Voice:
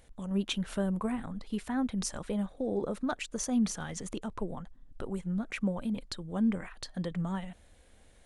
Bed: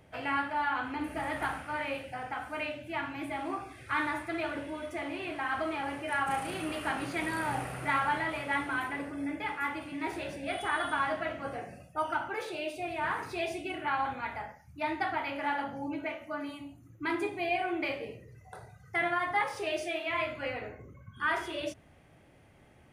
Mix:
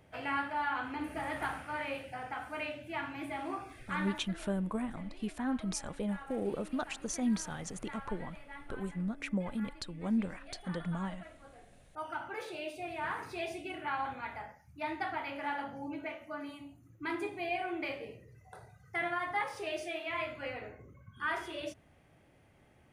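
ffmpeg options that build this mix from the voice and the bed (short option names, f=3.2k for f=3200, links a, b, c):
-filter_complex "[0:a]adelay=3700,volume=-3dB[a];[1:a]volume=10.5dB,afade=t=out:st=3.71:d=0.67:silence=0.177828,afade=t=in:st=11.66:d=0.75:silence=0.211349[b];[a][b]amix=inputs=2:normalize=0"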